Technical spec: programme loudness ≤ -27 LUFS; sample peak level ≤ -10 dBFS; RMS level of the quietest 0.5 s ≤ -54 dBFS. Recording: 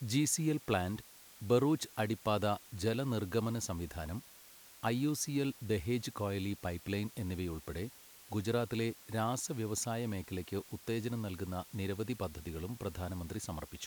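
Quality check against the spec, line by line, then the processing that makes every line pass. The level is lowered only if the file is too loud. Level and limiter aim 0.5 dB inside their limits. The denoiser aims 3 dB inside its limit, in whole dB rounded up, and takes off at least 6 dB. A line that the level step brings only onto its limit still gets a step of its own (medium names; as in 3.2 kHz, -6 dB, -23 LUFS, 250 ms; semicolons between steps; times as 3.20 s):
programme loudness -37.0 LUFS: pass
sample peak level -17.5 dBFS: pass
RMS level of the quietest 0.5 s -57 dBFS: pass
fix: none needed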